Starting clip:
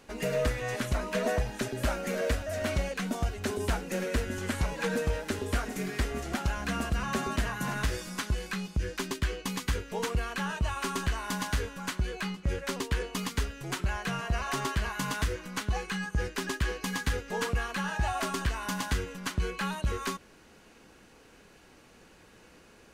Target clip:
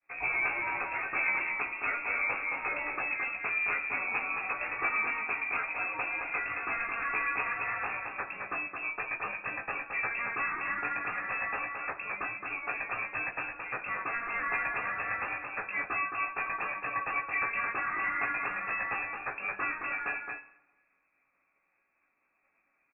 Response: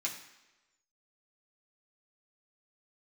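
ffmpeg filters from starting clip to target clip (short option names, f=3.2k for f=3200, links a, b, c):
-filter_complex "[0:a]highpass=230,agate=range=-33dB:threshold=-46dB:ratio=3:detection=peak,asplit=2[a][b];[b]acrusher=bits=5:mix=0:aa=0.000001,volume=-10.5dB[c];[a][c]amix=inputs=2:normalize=0,flanger=delay=15.5:depth=4:speed=0.69,aecho=1:1:219:0.562,asplit=2[d][e];[1:a]atrim=start_sample=2205[f];[e][f]afir=irnorm=-1:irlink=0,volume=-7.5dB[g];[d][g]amix=inputs=2:normalize=0,lowpass=f=2.4k:t=q:w=0.5098,lowpass=f=2.4k:t=q:w=0.6013,lowpass=f=2.4k:t=q:w=0.9,lowpass=f=2.4k:t=q:w=2.563,afreqshift=-2800"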